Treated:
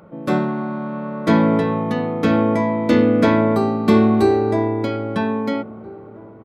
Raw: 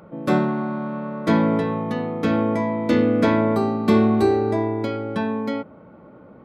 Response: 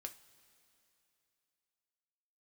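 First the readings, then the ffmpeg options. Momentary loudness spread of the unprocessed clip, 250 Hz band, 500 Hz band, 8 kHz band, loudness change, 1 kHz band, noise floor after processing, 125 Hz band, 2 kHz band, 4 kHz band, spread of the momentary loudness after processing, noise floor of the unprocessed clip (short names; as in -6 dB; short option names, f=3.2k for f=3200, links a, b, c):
9 LU, +3.0 dB, +3.0 dB, n/a, +3.0 dB, +3.0 dB, -40 dBFS, +3.0 dB, +3.0 dB, +3.0 dB, 11 LU, -46 dBFS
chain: -filter_complex "[0:a]dynaudnorm=f=440:g=5:m=6dB,asplit=2[a][b];[b]adelay=1633,volume=-21dB,highshelf=f=4k:g=-36.7[c];[a][c]amix=inputs=2:normalize=0"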